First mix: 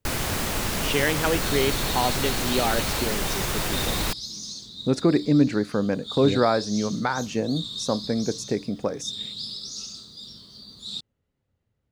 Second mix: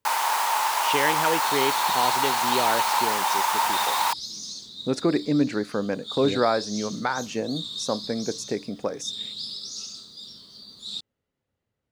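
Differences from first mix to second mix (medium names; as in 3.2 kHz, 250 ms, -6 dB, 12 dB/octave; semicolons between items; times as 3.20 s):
first sound: add resonant high-pass 910 Hz, resonance Q 8.6; master: add bass shelf 170 Hz -11.5 dB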